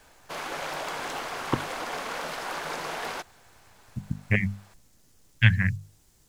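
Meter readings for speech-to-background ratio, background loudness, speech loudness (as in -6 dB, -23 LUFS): 6.5 dB, -33.5 LUFS, -27.0 LUFS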